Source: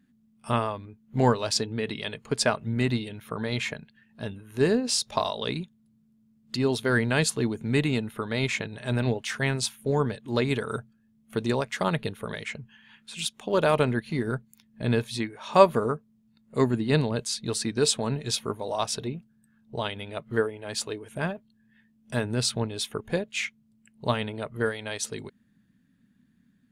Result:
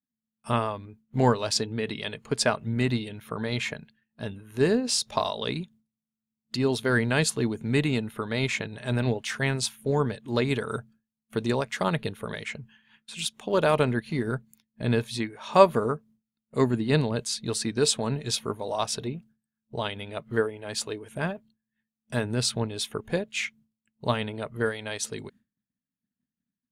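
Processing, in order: expander -48 dBFS

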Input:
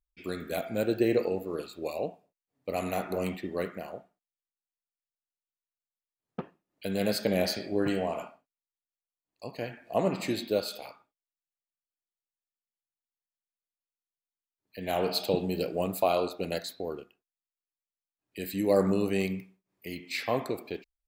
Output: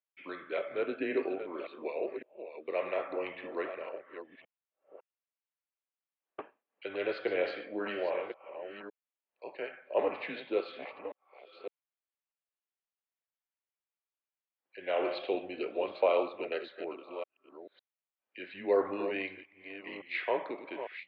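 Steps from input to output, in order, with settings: reverse delay 0.556 s, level -9.5 dB; mistuned SSB -93 Hz 510–3200 Hz

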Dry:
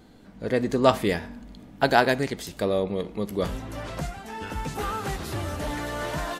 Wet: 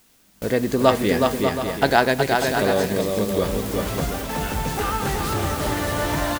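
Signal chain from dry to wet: added noise white -44 dBFS; in parallel at -1 dB: compressor 10:1, threshold -31 dBFS, peak gain reduction 19 dB; on the sum: gate with hold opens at -23 dBFS; bouncing-ball echo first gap 0.37 s, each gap 0.6×, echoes 5; gain +1 dB

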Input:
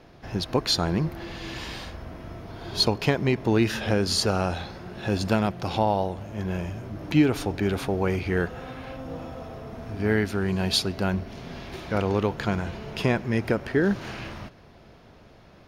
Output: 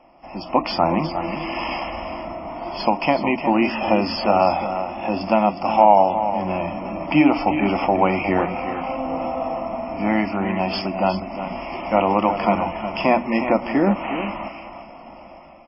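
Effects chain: low shelf 340 Hz -6 dB; notches 60/120/180/240/300 Hz; AGC gain up to 11.5 dB; fixed phaser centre 430 Hz, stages 6; overdrive pedal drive 8 dB, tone 3500 Hz, clips at -3 dBFS; Butterworth band-stop 3900 Hz, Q 1.3; echo 0.362 s -9.5 dB; gain +5 dB; MP3 16 kbps 12000 Hz

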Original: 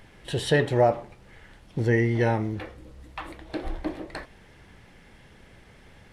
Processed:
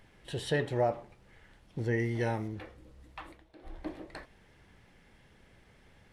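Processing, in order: 1.99–2.48 high shelf 6400 Hz +11.5 dB; 3.22–3.87 dip -16 dB, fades 0.31 s; gain -8.5 dB

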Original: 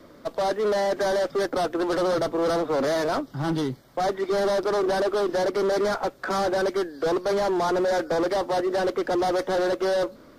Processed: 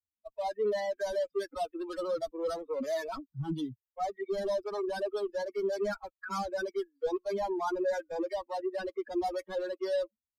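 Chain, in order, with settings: per-bin expansion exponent 3; gain -2.5 dB

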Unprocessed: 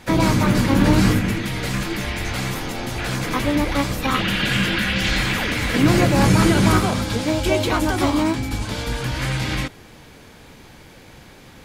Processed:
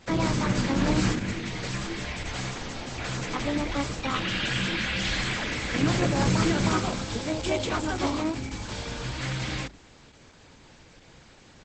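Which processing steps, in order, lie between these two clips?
high shelf 4200 Hz +4 dB; notches 50/100/150/200/250/300/350/400 Hz; downsampling 32000 Hz; gain -7 dB; Opus 12 kbps 48000 Hz

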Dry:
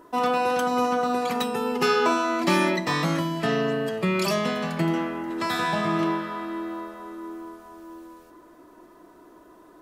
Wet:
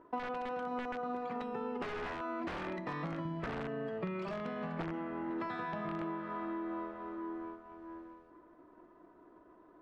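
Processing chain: G.711 law mismatch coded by A; 3.25–3.68 bell 79 Hz +12.5 dB 1.6 oct; wrapped overs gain 15.5 dB; compressor 12:1, threshold -33 dBFS, peak gain reduction 14 dB; LPF 1800 Hz 12 dB/oct; gain -1.5 dB

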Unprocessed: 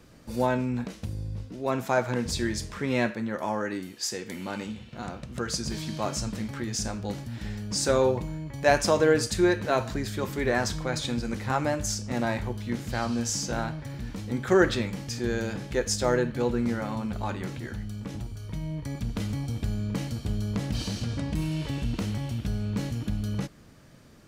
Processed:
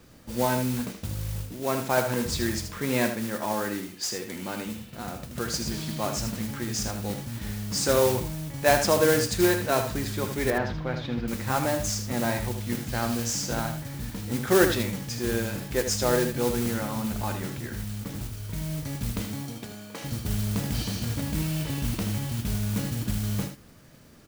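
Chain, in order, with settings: 19.21–20.03 HPF 130 Hz -> 540 Hz 12 dB/oct; modulation noise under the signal 11 dB; 10.5–11.28 air absorption 310 m; echo 78 ms -8.5 dB

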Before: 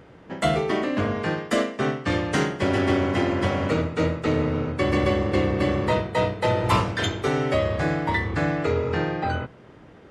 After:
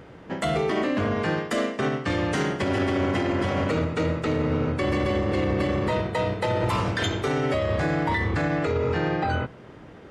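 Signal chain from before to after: limiter -19 dBFS, peak gain reduction 10 dB; gain +3 dB

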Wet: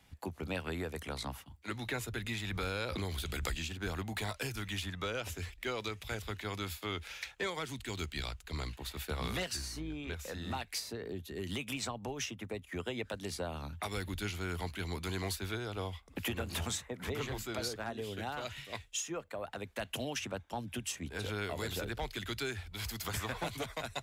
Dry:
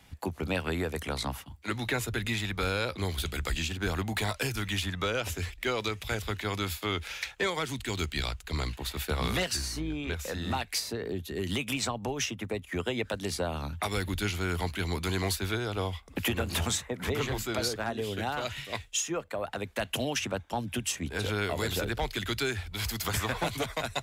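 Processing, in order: 2.44–3.55 backwards sustainer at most 22 dB/s; gain -7 dB

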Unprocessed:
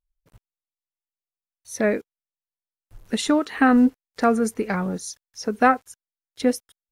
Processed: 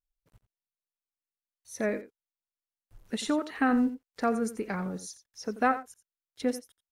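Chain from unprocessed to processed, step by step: echo 87 ms -14 dB; gain -8.5 dB

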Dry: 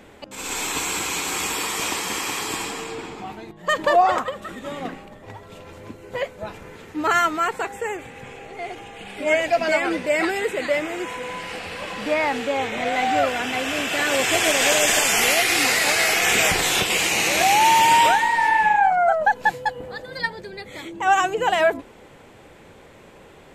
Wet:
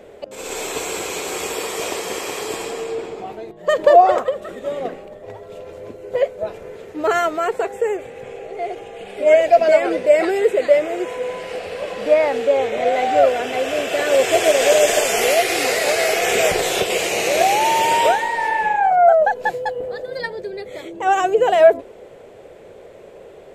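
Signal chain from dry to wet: band shelf 510 Hz +12 dB 1.1 oct; gain -2.5 dB

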